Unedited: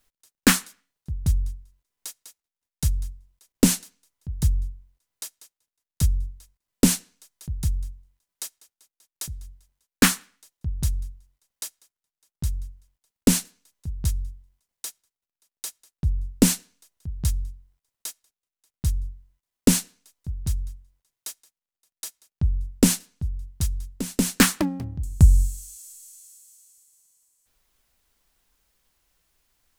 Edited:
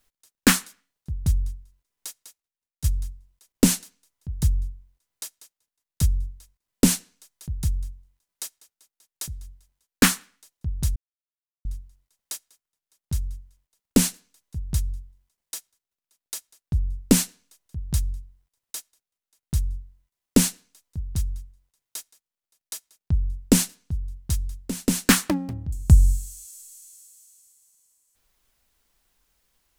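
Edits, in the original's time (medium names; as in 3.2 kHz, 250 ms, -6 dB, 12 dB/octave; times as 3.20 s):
2.21–2.84 s: fade out, to -12.5 dB
10.96 s: insert silence 0.69 s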